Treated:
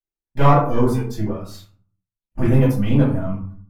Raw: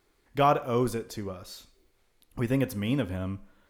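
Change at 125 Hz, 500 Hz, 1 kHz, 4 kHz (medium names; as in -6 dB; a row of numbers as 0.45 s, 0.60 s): +14.0 dB, +7.0 dB, +7.0 dB, +1.0 dB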